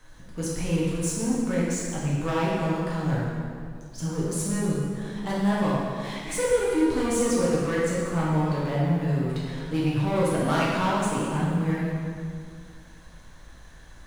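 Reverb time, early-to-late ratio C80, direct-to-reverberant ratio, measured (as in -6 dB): 2.1 s, 0.0 dB, -7.5 dB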